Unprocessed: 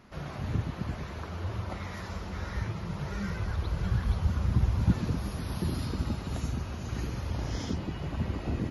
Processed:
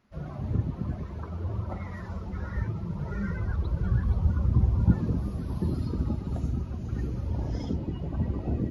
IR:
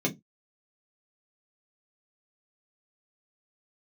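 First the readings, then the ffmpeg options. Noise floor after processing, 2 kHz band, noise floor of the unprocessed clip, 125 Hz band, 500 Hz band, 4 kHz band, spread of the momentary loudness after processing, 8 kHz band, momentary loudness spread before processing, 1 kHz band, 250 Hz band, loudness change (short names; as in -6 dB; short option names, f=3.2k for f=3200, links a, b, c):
-39 dBFS, -4.0 dB, -40 dBFS, +3.0 dB, +1.0 dB, under -10 dB, 11 LU, under -10 dB, 10 LU, -3.0 dB, +3.0 dB, +2.5 dB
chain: -af "afftdn=nr=16:nf=-37,bandreject=f=47.42:t=h:w=4,bandreject=f=94.84:t=h:w=4,bandreject=f=142.26:t=h:w=4,bandreject=f=189.68:t=h:w=4,bandreject=f=237.1:t=h:w=4,bandreject=f=284.52:t=h:w=4,bandreject=f=331.94:t=h:w=4,bandreject=f=379.36:t=h:w=4,bandreject=f=426.78:t=h:w=4,bandreject=f=474.2:t=h:w=4,bandreject=f=521.62:t=h:w=4,bandreject=f=569.04:t=h:w=4,bandreject=f=616.46:t=h:w=4,bandreject=f=663.88:t=h:w=4,bandreject=f=711.3:t=h:w=4,bandreject=f=758.72:t=h:w=4,bandreject=f=806.14:t=h:w=4,bandreject=f=853.56:t=h:w=4,bandreject=f=900.98:t=h:w=4,bandreject=f=948.4:t=h:w=4,bandreject=f=995.82:t=h:w=4,bandreject=f=1.04324k:t=h:w=4,bandreject=f=1.09066k:t=h:w=4,bandreject=f=1.13808k:t=h:w=4,bandreject=f=1.1855k:t=h:w=4,bandreject=f=1.23292k:t=h:w=4,bandreject=f=1.28034k:t=h:w=4,bandreject=f=1.32776k:t=h:w=4,volume=3.5dB"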